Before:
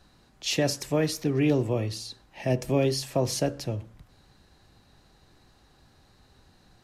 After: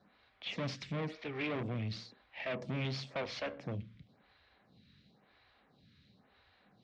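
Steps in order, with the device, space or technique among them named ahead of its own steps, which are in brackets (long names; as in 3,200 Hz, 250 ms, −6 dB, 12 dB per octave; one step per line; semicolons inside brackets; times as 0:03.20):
vibe pedal into a guitar amplifier (phaser with staggered stages 0.97 Hz; tube saturation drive 33 dB, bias 0.6; loudspeaker in its box 89–4,300 Hz, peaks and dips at 200 Hz +6 dB, 350 Hz −7 dB, 880 Hz −4 dB, 2,200 Hz +7 dB, 3,400 Hz +5 dB)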